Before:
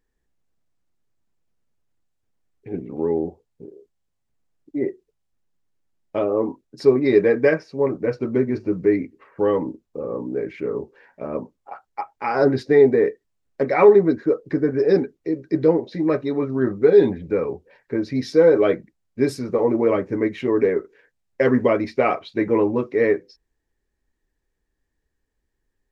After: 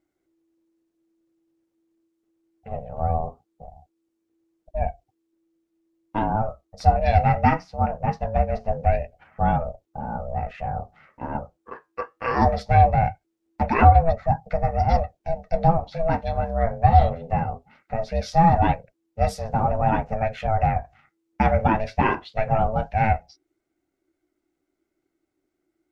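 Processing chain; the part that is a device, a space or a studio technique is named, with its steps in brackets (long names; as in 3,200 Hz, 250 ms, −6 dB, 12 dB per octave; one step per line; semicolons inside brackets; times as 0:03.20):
alien voice (ring modulation 330 Hz; flanger 0.21 Hz, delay 1 ms, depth 9.2 ms, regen −72%)
level +5.5 dB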